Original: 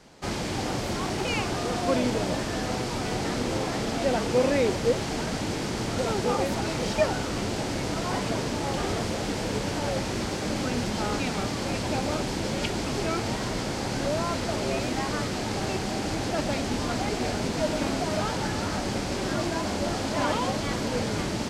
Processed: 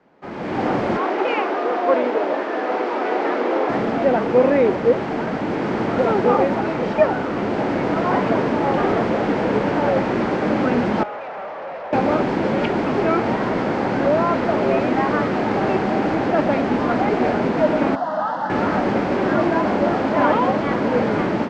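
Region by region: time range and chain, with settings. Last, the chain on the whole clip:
0.97–3.69 HPF 320 Hz 24 dB/oct + air absorption 55 m + Doppler distortion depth 0.13 ms
11.03–11.93 elliptic band-pass 580–5900 Hz + tilt -4.5 dB/oct + tube stage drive 39 dB, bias 0.65
17.95–18.5 BPF 320–4700 Hz + fixed phaser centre 970 Hz, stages 4
whole clip: three-band isolator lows -17 dB, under 160 Hz, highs -21 dB, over 2200 Hz; AGC gain up to 14.5 dB; LPF 5600 Hz 12 dB/oct; gain -2.5 dB

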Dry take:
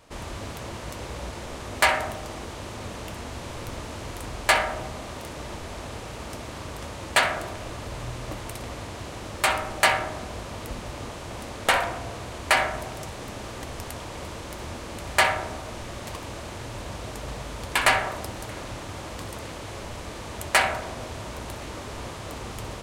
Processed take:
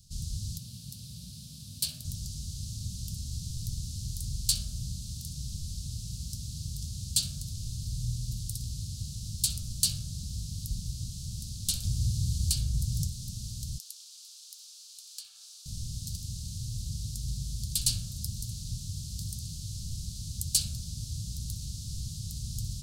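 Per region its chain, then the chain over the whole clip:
0.58–2.05 HPF 160 Hz + bell 6700 Hz -8 dB 0.96 oct + notch 1300 Hz, Q 9.8
11.84–13.07 bell 68 Hz +8.5 dB 2.6 oct + three-band squash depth 40%
13.78–15.66 Chebyshev high-pass 770 Hz, order 5 + high shelf 5000 Hz -7 dB + compressor 4:1, threshold -31 dBFS
whole clip: elliptic band-stop 160–4500 Hz, stop band 40 dB; dynamic EQ 1400 Hz, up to -4 dB, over -56 dBFS, Q 0.75; gain +4 dB

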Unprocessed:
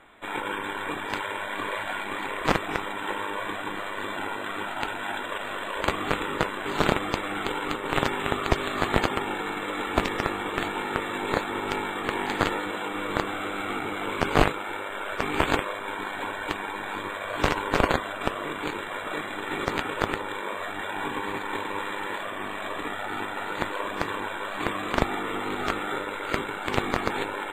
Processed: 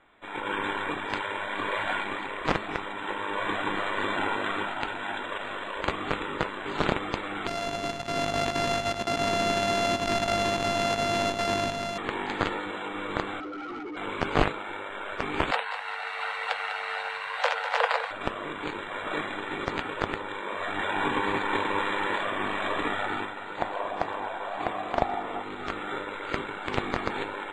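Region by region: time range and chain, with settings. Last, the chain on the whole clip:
7.47–11.98 sample sorter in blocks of 64 samples + negative-ratio compressor -30 dBFS, ratio -0.5 + echo 99 ms -8 dB
13.4–13.97 spectral contrast raised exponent 3 + overloaded stage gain 30.5 dB
15.51–18.11 frequency shift +450 Hz + lo-fi delay 0.2 s, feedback 35%, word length 7-bit, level -10.5 dB
23.58–25.42 bell 720 Hz +14.5 dB 0.62 oct + feedback echo 0.116 s, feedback 56%, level -18.5 dB
whole clip: LPF 5800 Hz 12 dB/oct; de-hum 215.9 Hz, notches 20; AGC; gain -7.5 dB

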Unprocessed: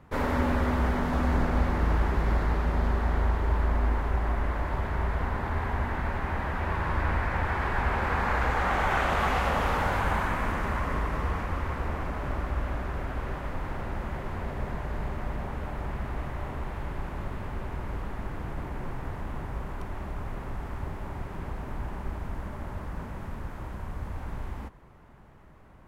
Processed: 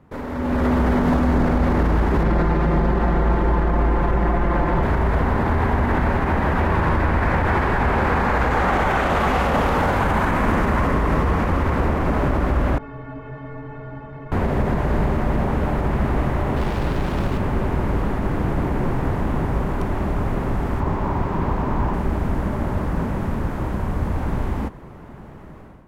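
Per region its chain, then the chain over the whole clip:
2.23–4.83 high shelf 4900 Hz -9 dB + comb 5.8 ms, depth 76%
12.78–14.32 LPF 2400 Hz + metallic resonator 130 Hz, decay 0.46 s, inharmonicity 0.03
16.56–17.38 self-modulated delay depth 0.62 ms + high shelf 4500 Hz +4.5 dB
20.8–21.94 bell 1000 Hz +7 dB 0.48 oct + decimation joined by straight lines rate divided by 3×
whole clip: bell 260 Hz +7.5 dB 2.8 oct; limiter -20.5 dBFS; AGC gain up to 13 dB; gain -3 dB

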